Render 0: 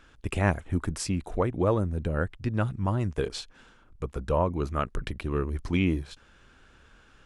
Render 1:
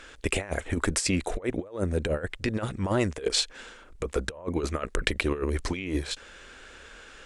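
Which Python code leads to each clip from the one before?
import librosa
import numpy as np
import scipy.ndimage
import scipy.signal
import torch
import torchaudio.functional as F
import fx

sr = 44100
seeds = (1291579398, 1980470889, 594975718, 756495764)

y = fx.graphic_eq(x, sr, hz=(125, 500, 2000, 4000, 8000), db=(-8, 9, 8, 5, 11))
y = fx.over_compress(y, sr, threshold_db=-27.0, ratio=-0.5)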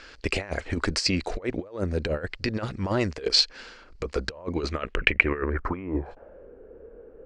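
y = fx.filter_sweep_lowpass(x, sr, from_hz=4500.0, to_hz=460.0, start_s=4.62, end_s=6.53, q=4.4)
y = fx.peak_eq(y, sr, hz=3600.0, db=-10.0, octaves=0.41)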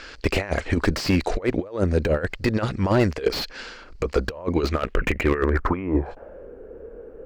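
y = fx.slew_limit(x, sr, full_power_hz=80.0)
y = y * 10.0 ** (6.5 / 20.0)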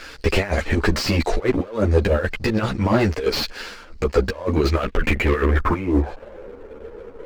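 y = fx.leveller(x, sr, passes=2)
y = fx.ensemble(y, sr)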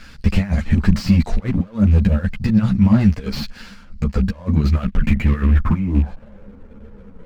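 y = fx.rattle_buzz(x, sr, strikes_db=-17.0, level_db=-24.0)
y = fx.low_shelf_res(y, sr, hz=270.0, db=11.0, q=3.0)
y = y * 10.0 ** (-6.5 / 20.0)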